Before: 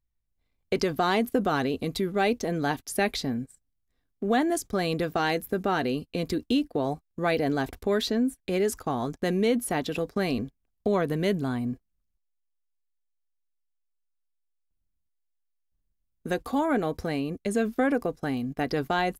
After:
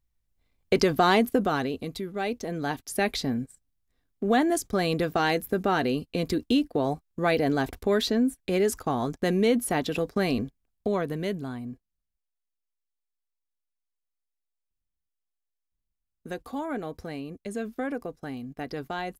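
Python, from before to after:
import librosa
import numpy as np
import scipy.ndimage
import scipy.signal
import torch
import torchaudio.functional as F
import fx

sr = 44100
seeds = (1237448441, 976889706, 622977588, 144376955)

y = fx.gain(x, sr, db=fx.line((1.12, 4.0), (2.07, -6.5), (3.31, 1.5), (10.41, 1.5), (11.64, -7.0)))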